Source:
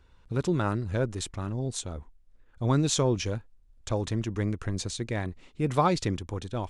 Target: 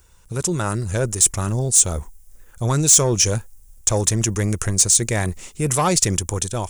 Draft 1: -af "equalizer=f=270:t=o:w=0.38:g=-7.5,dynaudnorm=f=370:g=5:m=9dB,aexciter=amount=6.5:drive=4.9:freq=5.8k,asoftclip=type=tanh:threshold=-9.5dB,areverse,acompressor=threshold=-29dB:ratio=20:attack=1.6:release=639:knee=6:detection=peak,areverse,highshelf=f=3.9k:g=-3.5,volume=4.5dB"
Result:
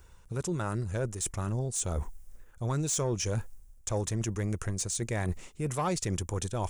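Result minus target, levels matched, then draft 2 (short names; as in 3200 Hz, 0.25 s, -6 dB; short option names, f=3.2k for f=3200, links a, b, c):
compressor: peak gain reduction +11 dB; 8000 Hz band -4.0 dB
-af "equalizer=f=270:t=o:w=0.38:g=-7.5,dynaudnorm=f=370:g=5:m=9dB,aexciter=amount=6.5:drive=4.9:freq=5.8k,asoftclip=type=tanh:threshold=-9.5dB,areverse,acompressor=threshold=-17.5dB:ratio=20:attack=1.6:release=639:knee=6:detection=peak,areverse,highshelf=f=3.9k:g=6.5,volume=4.5dB"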